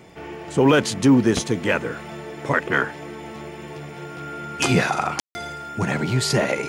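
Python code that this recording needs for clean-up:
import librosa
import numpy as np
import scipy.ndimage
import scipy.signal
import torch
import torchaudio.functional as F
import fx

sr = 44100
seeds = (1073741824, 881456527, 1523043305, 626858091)

y = fx.fix_declick_ar(x, sr, threshold=6.5)
y = fx.notch(y, sr, hz=1400.0, q=30.0)
y = fx.fix_ambience(y, sr, seeds[0], print_start_s=0.0, print_end_s=0.5, start_s=5.2, end_s=5.35)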